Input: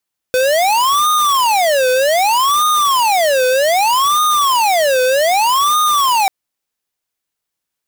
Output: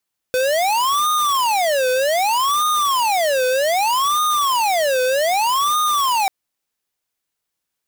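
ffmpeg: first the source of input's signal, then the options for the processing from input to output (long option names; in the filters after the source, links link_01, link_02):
-f lavfi -i "aevalsrc='0.224*(2*lt(mod((868*t-362/(2*PI*0.64)*sin(2*PI*0.64*t)),1),0.5)-1)':duration=5.94:sample_rate=44100"
-af "aeval=exprs='(mod(5.62*val(0)+1,2)-1)/5.62':channel_layout=same"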